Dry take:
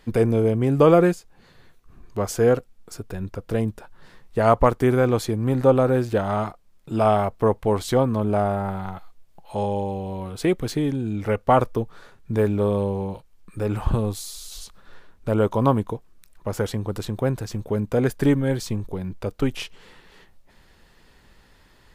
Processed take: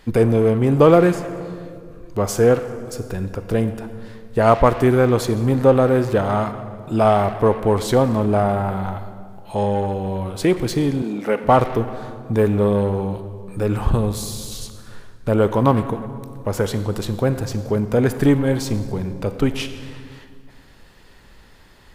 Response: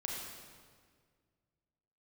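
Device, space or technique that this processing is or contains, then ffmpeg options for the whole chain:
saturated reverb return: -filter_complex "[0:a]asplit=2[link_01][link_02];[1:a]atrim=start_sample=2205[link_03];[link_02][link_03]afir=irnorm=-1:irlink=0,asoftclip=type=tanh:threshold=-21.5dB,volume=-5dB[link_04];[link_01][link_04]amix=inputs=2:normalize=0,asettb=1/sr,asplit=3[link_05][link_06][link_07];[link_05]atrim=end=11.024[link_08];[link_06]atrim=start=11.02:end=11.44,asetpts=PTS-STARTPTS,afade=type=in:duration=0.004:curve=qsin,afade=type=out:start_time=0.416:duration=0.004:curve=qsin,highpass=frequency=210:width=0.5412,highpass=frequency=210:width=1.3066[link_09];[link_07]atrim=start=11.436[link_10];[link_08][link_09]acrossfade=duration=0.004:curve1=hsin:curve2=qsin[link_11];[link_11][link_10]acrossfade=duration=0.004:curve1=qsin:curve2=hsin,volume=2dB"

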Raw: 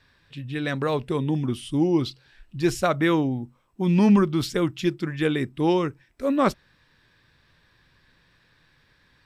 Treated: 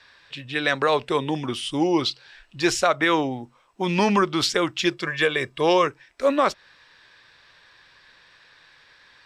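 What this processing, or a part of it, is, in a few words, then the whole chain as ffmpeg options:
DJ mixer with the lows and highs turned down: -filter_complex "[0:a]asettb=1/sr,asplit=3[link_01][link_02][link_03];[link_01]atrim=end=4.924[link_04];[link_02]atrim=start=4.92:end=5.87,asetpts=PTS-STARTPTS,afade=type=in:duration=0.004:curve=qsin,afade=type=out:start_time=0.946:duration=0.004:curve=qsin,aecho=1:1:1.8:0.52,atrim=end_sample=41895[link_05];[link_03]atrim=start=5.866[link_06];[link_04][link_05]acrossfade=duration=0.004:curve1=hsin:curve2=qsin[link_07];[link_07][link_06]acrossfade=duration=0.004:curve1=qsin:curve2=hsin,acrossover=split=450 7600:gain=0.158 1 0.1[link_08][link_09][link_10];[link_08][link_09][link_10]amix=inputs=3:normalize=0,alimiter=limit=-18dB:level=0:latency=1:release=192,highshelf=frequency=6400:gain=6,volume=9dB"

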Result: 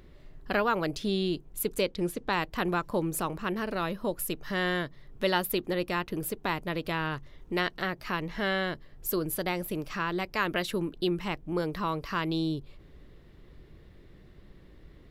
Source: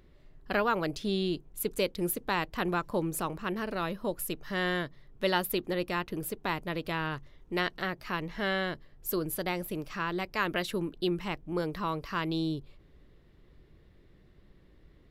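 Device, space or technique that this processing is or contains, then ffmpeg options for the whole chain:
parallel compression: -filter_complex "[0:a]asplit=2[link_01][link_02];[link_02]acompressor=threshold=-43dB:ratio=6,volume=0dB[link_03];[link_01][link_03]amix=inputs=2:normalize=0,asettb=1/sr,asplit=3[link_04][link_05][link_06];[link_04]atrim=end=1.814[link_07];[link_05]atrim=start=1.81:end=2.33,asetpts=PTS-STARTPTS,afade=type=in:duration=0.004:curve=qsin,afade=type=out:start_time=0.516:duration=0.004:curve=qsin,lowpass=6900[link_08];[link_06]atrim=start=2.326[link_09];[link_07][link_08]acrossfade=duration=0.004:curve1=hsin:curve2=qsin[link_10];[link_10][link_09]acrossfade=duration=0.004:curve1=qsin:curve2=hsin"

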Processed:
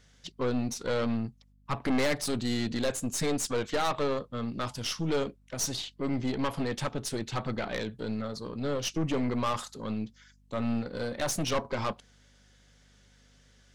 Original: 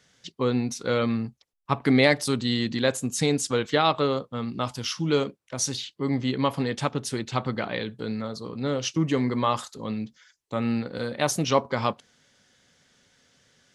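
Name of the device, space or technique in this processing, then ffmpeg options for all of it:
valve amplifier with mains hum: -af "aeval=exprs='(tanh(15.8*val(0)+0.5)-tanh(0.5))/15.8':channel_layout=same,aeval=exprs='val(0)+0.000891*(sin(2*PI*50*n/s)+sin(2*PI*2*50*n/s)/2+sin(2*PI*3*50*n/s)/3+sin(2*PI*4*50*n/s)/4+sin(2*PI*5*50*n/s)/5)':channel_layout=same"

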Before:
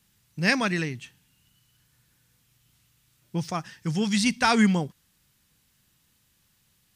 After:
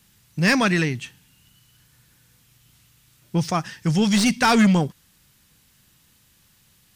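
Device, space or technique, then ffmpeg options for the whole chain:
saturation between pre-emphasis and de-emphasis: -af "highshelf=frequency=4900:gain=10,asoftclip=type=tanh:threshold=-19dB,highshelf=frequency=4900:gain=-10,volume=8dB"

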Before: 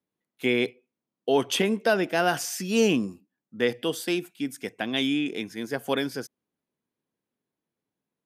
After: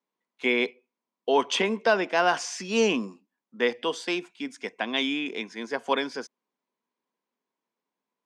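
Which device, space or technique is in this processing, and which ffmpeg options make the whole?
television speaker: -af "highpass=frequency=220:width=0.5412,highpass=frequency=220:width=1.3066,equalizer=frequency=310:width_type=q:width=4:gain=-6,equalizer=frequency=1000:width_type=q:width=4:gain=10,equalizer=frequency=2200:width_type=q:width=4:gain=3,lowpass=frequency=7000:width=0.5412,lowpass=frequency=7000:width=1.3066"

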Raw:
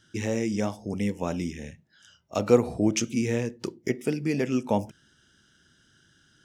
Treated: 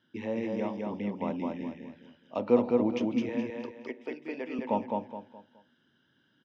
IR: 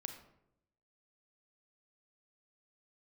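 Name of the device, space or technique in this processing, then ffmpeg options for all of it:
kitchen radio: -filter_complex "[0:a]highpass=160,equalizer=frequency=250:width_type=q:width=4:gain=8,equalizer=frequency=540:width_type=q:width=4:gain=5,equalizer=frequency=950:width_type=q:width=4:gain=10,equalizer=frequency=1400:width_type=q:width=4:gain=-5,lowpass=frequency=3600:width=0.5412,lowpass=frequency=3600:width=1.3066,asettb=1/sr,asplit=3[link_01][link_02][link_03];[link_01]atrim=end=3.294[link_04];[link_02]atrim=start=3.29:end=4.59,asetpts=PTS-STARTPTS,afade=type=in:duration=0.004:curve=qsin,afade=type=out:start_time=1.296:duration=0.004:curve=qsin,highpass=480[link_05];[link_03]atrim=start=4.586[link_06];[link_04][link_05]acrossfade=duration=0.004:curve1=hsin:curve2=qsin[link_07];[link_07][link_06]acrossfade=duration=0.004:curve1=qsin:curve2=hsin,aecho=1:1:210|420|630|840:0.708|0.234|0.0771|0.0254,volume=-8dB"

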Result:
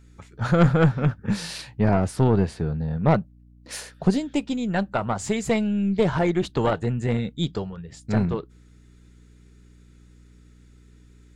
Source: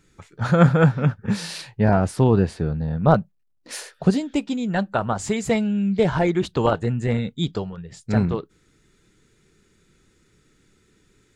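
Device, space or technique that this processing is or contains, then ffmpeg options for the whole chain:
valve amplifier with mains hum: -af "aeval=exprs='(tanh(2.82*val(0)+0.4)-tanh(0.4))/2.82':channel_layout=same,aeval=exprs='val(0)+0.00316*(sin(2*PI*60*n/s)+sin(2*PI*2*60*n/s)/2+sin(2*PI*3*60*n/s)/3+sin(2*PI*4*60*n/s)/4+sin(2*PI*5*60*n/s)/5)':channel_layout=same"

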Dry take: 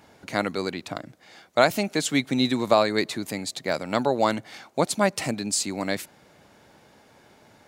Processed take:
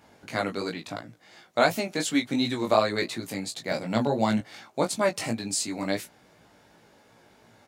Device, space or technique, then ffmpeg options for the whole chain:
double-tracked vocal: -filter_complex "[0:a]asplit=2[link_01][link_02];[link_02]adelay=17,volume=-9.5dB[link_03];[link_01][link_03]amix=inputs=2:normalize=0,flanger=delay=17.5:depth=3.3:speed=2.8,asettb=1/sr,asplit=3[link_04][link_05][link_06];[link_04]atrim=end=3.714[link_07];[link_05]atrim=start=3.71:end=4.41,asetpts=PTS-STARTPTS,afade=type=in:duration=0.004:curve=qsin,afade=type=out:start_time=0.696:duration=0.004:curve=qsin,equalizer=frequency=125:width_type=o:width=0.33:gain=9,equalizer=frequency=200:width_type=o:width=0.33:gain=10,equalizer=frequency=1250:width_type=o:width=0.33:gain=-6[link_08];[link_06]atrim=start=4.406[link_09];[link_07][link_08]acrossfade=duration=0.004:curve1=hsin:curve2=qsin[link_10];[link_10][link_09]acrossfade=duration=0.004:curve1=qsin:curve2=hsin"

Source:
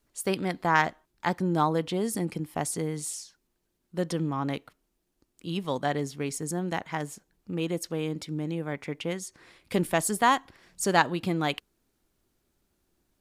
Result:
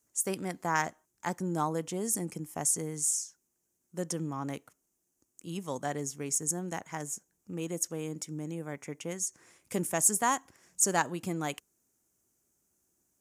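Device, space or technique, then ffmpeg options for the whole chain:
budget condenser microphone: -af "highpass=77,highshelf=frequency=5200:width_type=q:width=3:gain=8.5,volume=-6dB"

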